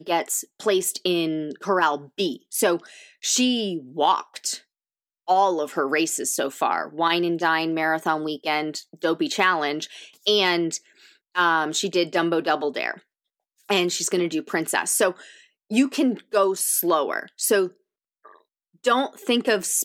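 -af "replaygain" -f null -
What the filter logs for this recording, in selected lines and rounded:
track_gain = +2.7 dB
track_peak = 0.385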